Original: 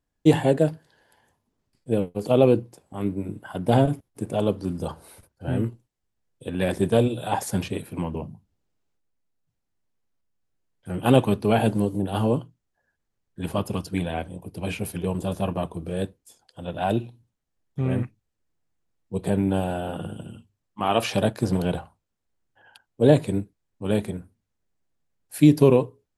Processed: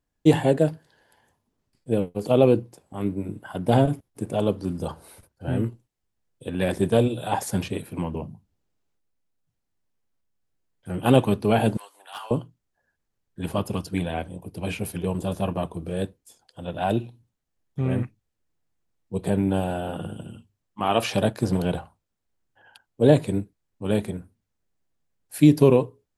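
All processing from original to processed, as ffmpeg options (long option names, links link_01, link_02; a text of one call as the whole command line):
ffmpeg -i in.wav -filter_complex "[0:a]asettb=1/sr,asplit=3[link_01][link_02][link_03];[link_01]atrim=end=11.774[link_04];[link_02]atrim=start=11.77:end=12.31,asetpts=PTS-STARTPTS,afade=type=in:duration=0.004:curve=qsin,afade=type=out:start_time=0.536:duration=0.004:curve=qsin,highpass=frequency=990:width=0.5412,highpass=frequency=990:width=1.3066,highshelf=frequency=5200:gain=-4.5,volume=30.5dB,asoftclip=hard,volume=-30.5dB[link_05];[link_03]atrim=start=12.306[link_06];[link_04][link_05]acrossfade=duration=0.004:curve1=hsin:curve2=qsin[link_07];[link_07][link_06]acrossfade=duration=0.004:curve1=qsin:curve2=hsin" out.wav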